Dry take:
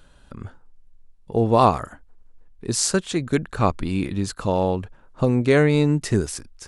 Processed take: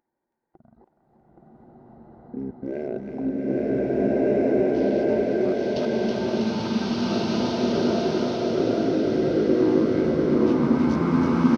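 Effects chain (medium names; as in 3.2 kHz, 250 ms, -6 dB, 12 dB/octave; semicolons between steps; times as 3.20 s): local Wiener filter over 9 samples; gate -39 dBFS, range -38 dB; tone controls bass -13 dB, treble -4 dB; small resonant body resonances 400/640/2700 Hz, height 10 dB, ringing for 60 ms; on a send: feedback delay 475 ms, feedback 45%, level -3 dB; on the sum: speed mistake 78 rpm record played at 45 rpm; level held to a coarse grid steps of 23 dB; high-pass 150 Hz 6 dB/octave; upward compressor, threshold -45 dBFS; thinning echo 323 ms, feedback 74%, high-pass 1.1 kHz, level -4 dB; swelling reverb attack 1580 ms, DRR -11.5 dB; trim -6 dB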